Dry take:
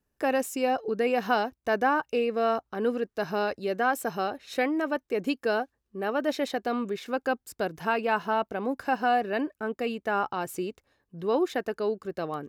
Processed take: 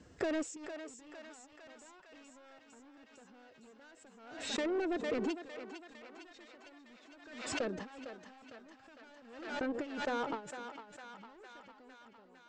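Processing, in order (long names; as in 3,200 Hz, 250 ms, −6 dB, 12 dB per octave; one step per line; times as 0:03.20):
fade-out on the ending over 0.82 s
low-shelf EQ 300 Hz +7.5 dB
phase-vocoder pitch shift with formants kept +3 semitones
high-pass filter 100 Hz 12 dB per octave
soft clipping −29 dBFS, distortion −7 dB
feedback echo with a low-pass in the loop 450 ms, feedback 68%, low-pass 1,000 Hz, level −16 dB
downward compressor 5 to 1, threshold −38 dBFS, peak gain reduction 8 dB
elliptic low-pass filter 7,800 Hz, stop band 40 dB
noise gate with hold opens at −32 dBFS
feedback echo with a high-pass in the loop 455 ms, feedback 71%, high-pass 450 Hz, level −8 dB
dynamic equaliser 440 Hz, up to +6 dB, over −55 dBFS, Q 1
background raised ahead of every attack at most 60 dB per second
level +1.5 dB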